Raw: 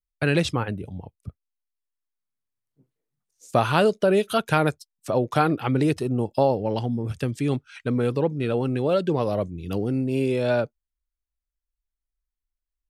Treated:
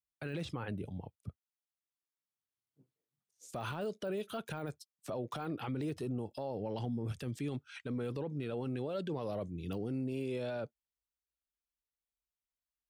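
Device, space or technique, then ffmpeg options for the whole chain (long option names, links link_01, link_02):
broadcast voice chain: -af "highpass=83,deesser=0.9,acompressor=threshold=-24dB:ratio=3,equalizer=frequency=3400:width_type=o:width=0.35:gain=2.5,alimiter=limit=-24dB:level=0:latency=1:release=19,volume=-6dB"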